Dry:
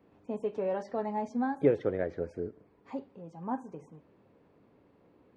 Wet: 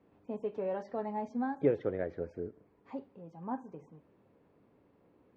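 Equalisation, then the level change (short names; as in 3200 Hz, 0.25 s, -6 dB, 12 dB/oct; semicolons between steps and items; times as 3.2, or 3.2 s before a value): air absorption 100 m; -3.0 dB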